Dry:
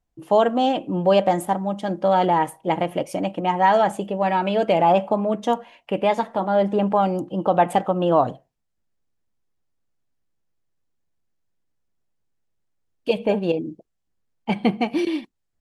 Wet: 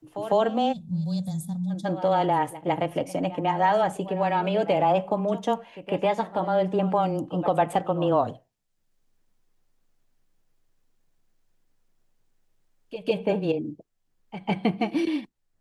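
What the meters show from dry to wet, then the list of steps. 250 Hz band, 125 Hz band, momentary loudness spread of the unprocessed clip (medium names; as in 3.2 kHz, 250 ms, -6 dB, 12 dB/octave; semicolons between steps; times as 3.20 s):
-3.5 dB, -1.0 dB, 9 LU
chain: time-frequency box 0.73–1.85 s, 250–3400 Hz -28 dB; reverse echo 152 ms -17 dB; frequency shift -13 Hz; three bands compressed up and down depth 40%; trim -4 dB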